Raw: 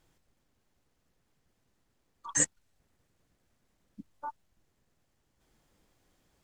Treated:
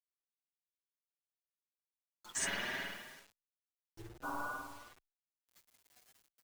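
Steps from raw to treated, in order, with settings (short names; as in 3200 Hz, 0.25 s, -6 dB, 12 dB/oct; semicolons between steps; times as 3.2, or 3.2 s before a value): spectral gate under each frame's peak -15 dB weak; high shelf 2800 Hz +7.5 dB; doubler 18 ms -12 dB; in parallel at -2 dB: limiter -25 dBFS, peak gain reduction 8.5 dB; on the sum: spectral noise reduction 27 dB; spring tank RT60 1.2 s, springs 52 ms, chirp 75 ms, DRR -0.5 dB; reverse; compressor 6:1, threshold -50 dBFS, peak gain reduction 23.5 dB; reverse; companded quantiser 6-bit; endless flanger 6.5 ms +2.7 Hz; gain +16 dB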